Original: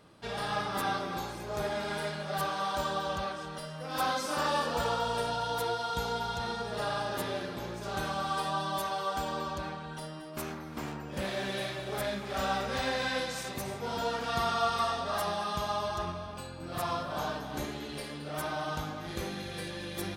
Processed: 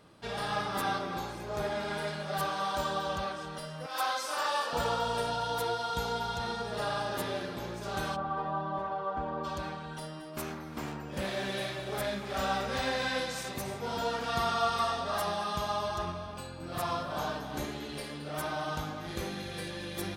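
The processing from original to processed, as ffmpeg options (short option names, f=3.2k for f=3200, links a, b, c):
-filter_complex "[0:a]asettb=1/sr,asplit=3[a][b][c];[a]atrim=end=0.984[d];[b]atrim=start=0.98:end=2.08,asetpts=PTS-STARTPTS,afade=t=in:d=0.004:c=qsin,afade=t=out:st=1.096:d=0.004:c=qsin,highshelf=f=5.3k:g=-4[e];[c]atrim=start=2.076[f];[d][e]acrossfade=d=0.004:c1=hsin:c2=qsin[g];[g][f]acrossfade=d=0.004:c1=qsin:c2=hsin,asettb=1/sr,asplit=3[h][i][j];[h]atrim=end=3.864[k];[i]atrim=start=3.86:end=4.73,asetpts=PTS-STARTPTS,afade=t=in:d=0.004:c=qsin,afade=t=out:st=0.866:d=0.004:c=qsin,highpass=610[l];[j]atrim=start=4.726[m];[k][l]acrossfade=d=0.004:c1=hsin:c2=qsin[n];[n][m]acrossfade=d=0.004:c1=qsin:c2=hsin,asplit=3[o][p][q];[o]afade=t=out:st=8.15:d=0.02[r];[p]lowpass=1.3k,afade=t=in:st=8.15:d=0.02,afade=t=out:st=9.43:d=0.02[s];[q]afade=t=in:st=9.43:d=0.02[t];[r][s][t]amix=inputs=3:normalize=0"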